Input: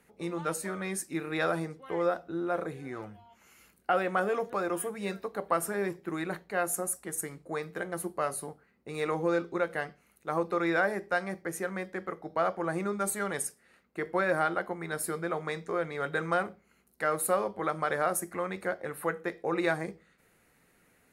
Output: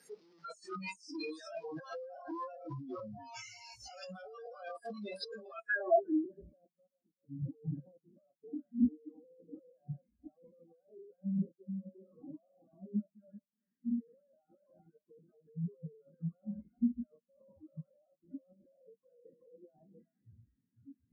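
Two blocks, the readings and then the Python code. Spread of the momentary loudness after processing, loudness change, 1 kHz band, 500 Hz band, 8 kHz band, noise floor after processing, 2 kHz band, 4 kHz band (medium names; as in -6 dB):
20 LU, -7.5 dB, -13.5 dB, -11.5 dB, under -20 dB, under -85 dBFS, -12.5 dB, -7.0 dB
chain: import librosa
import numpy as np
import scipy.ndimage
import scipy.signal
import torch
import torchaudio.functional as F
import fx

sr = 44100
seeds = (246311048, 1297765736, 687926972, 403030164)

y = np.sign(x) * np.sqrt(np.mean(np.square(x)))
y = scipy.signal.sosfilt(scipy.signal.butter(2, 120.0, 'highpass', fs=sr, output='sos'), y)
y = fx.hum_notches(y, sr, base_hz=50, count=5)
y = y + 10.0 ** (-5.0 / 20.0) * np.pad(y, (int(380 * sr / 1000.0), 0))[:len(y)]
y = fx.noise_reduce_blind(y, sr, reduce_db=29)
y = fx.over_compress(y, sr, threshold_db=-44.0, ratio=-1.0)
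y = np.clip(10.0 ** (35.0 / 20.0) * y, -1.0, 1.0) / 10.0 ** (35.0 / 20.0)
y = fx.filter_sweep_lowpass(y, sr, from_hz=5100.0, to_hz=240.0, start_s=5.44, end_s=6.23, q=3.6)
y = fx.spectral_expand(y, sr, expansion=1.5)
y = F.gain(torch.from_numpy(y), 6.5).numpy()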